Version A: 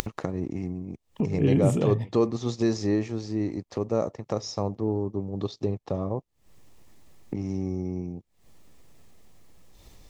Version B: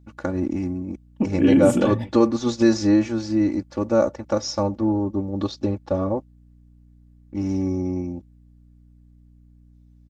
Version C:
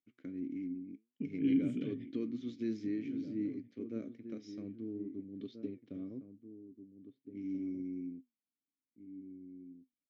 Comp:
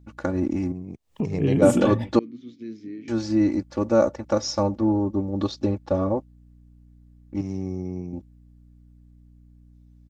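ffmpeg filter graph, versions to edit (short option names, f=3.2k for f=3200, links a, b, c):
-filter_complex "[0:a]asplit=2[a][b];[1:a]asplit=4[c][d][e][f];[c]atrim=end=0.722[g];[a]atrim=start=0.718:end=1.622[h];[d]atrim=start=1.618:end=2.192[i];[2:a]atrim=start=2.188:end=3.082[j];[e]atrim=start=3.078:end=7.412[k];[b]atrim=start=7.408:end=8.132[l];[f]atrim=start=8.128[m];[g][h]acrossfade=d=0.004:c1=hsin:c2=hsin[n];[n][i]acrossfade=d=0.004:c1=hsin:c2=hsin[o];[o][j]acrossfade=d=0.004:c1=hsin:c2=hsin[p];[p][k]acrossfade=d=0.004:c1=hsin:c2=hsin[q];[q][l]acrossfade=d=0.004:c1=hsin:c2=hsin[r];[r][m]acrossfade=d=0.004:c1=hsin:c2=hsin"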